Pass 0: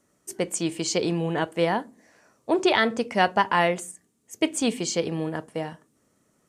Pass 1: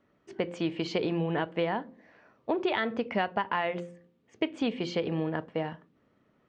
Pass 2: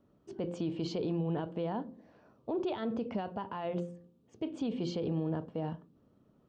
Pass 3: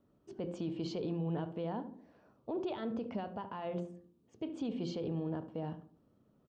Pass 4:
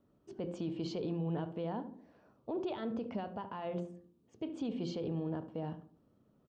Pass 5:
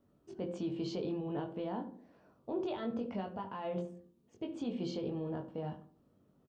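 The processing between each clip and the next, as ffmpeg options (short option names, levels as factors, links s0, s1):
-af "lowpass=f=3500:w=0.5412,lowpass=f=3500:w=1.3066,bandreject=f=173.8:t=h:w=4,bandreject=f=347.6:t=h:w=4,bandreject=f=521.4:t=h:w=4,acompressor=threshold=0.0562:ratio=6"
-af "lowshelf=f=340:g=8,alimiter=limit=0.0668:level=0:latency=1:release=22,equalizer=f=2000:w=1.9:g=-13.5,volume=0.75"
-filter_complex "[0:a]asplit=2[s0][s1];[s1]adelay=72,lowpass=f=1400:p=1,volume=0.266,asplit=2[s2][s3];[s3]adelay=72,lowpass=f=1400:p=1,volume=0.43,asplit=2[s4][s5];[s5]adelay=72,lowpass=f=1400:p=1,volume=0.43,asplit=2[s6][s7];[s7]adelay=72,lowpass=f=1400:p=1,volume=0.43[s8];[s0][s2][s4][s6][s8]amix=inputs=5:normalize=0,volume=0.668"
-af anull
-filter_complex "[0:a]asplit=2[s0][s1];[s1]adelay=21,volume=0.631[s2];[s0][s2]amix=inputs=2:normalize=0,volume=0.891"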